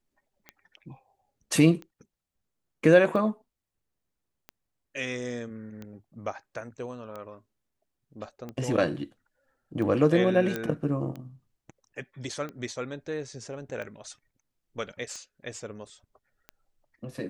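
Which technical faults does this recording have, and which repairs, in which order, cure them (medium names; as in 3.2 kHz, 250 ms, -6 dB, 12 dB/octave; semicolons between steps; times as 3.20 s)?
tick 45 rpm -26 dBFS
10.56 s: pop -16 dBFS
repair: de-click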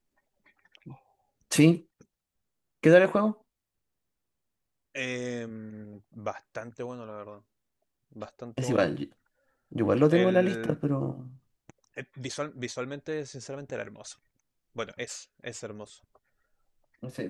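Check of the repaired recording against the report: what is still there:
nothing left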